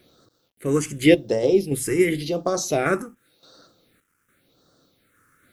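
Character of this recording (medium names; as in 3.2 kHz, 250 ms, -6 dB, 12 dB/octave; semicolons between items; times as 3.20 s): random-step tremolo, depth 80%; a quantiser's noise floor 12-bit, dither none; phasing stages 4, 0.9 Hz, lowest notch 640–2300 Hz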